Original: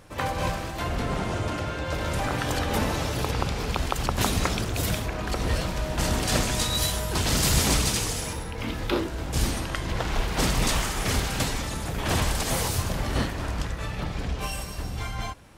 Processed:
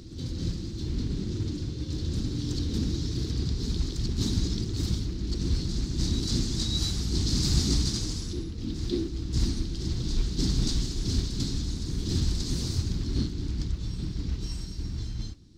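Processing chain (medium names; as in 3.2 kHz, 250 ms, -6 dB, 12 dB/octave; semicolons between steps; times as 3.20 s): elliptic band-stop 340–4200 Hz, stop band 40 dB; treble shelf 3 kHz +8 dB; modulation noise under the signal 18 dB; distance through air 170 m; reverse echo 583 ms -9 dB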